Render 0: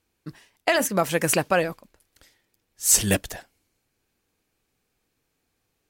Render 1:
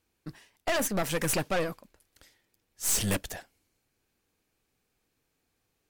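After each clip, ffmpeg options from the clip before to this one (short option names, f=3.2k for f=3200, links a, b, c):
-af "aeval=exprs='(tanh(15.8*val(0)+0.55)-tanh(0.55))/15.8':c=same"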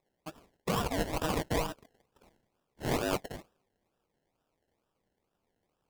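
-af "aeval=exprs='val(0)*sin(2*PI*470*n/s)':c=same,acrusher=samples=29:mix=1:aa=0.000001:lfo=1:lforange=17.4:lforate=2.2"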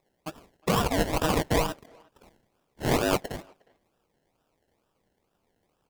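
-filter_complex "[0:a]asplit=2[a][b];[b]adelay=360,highpass=300,lowpass=3.4k,asoftclip=type=hard:threshold=-30.5dB,volume=-25dB[c];[a][c]amix=inputs=2:normalize=0,volume=6.5dB"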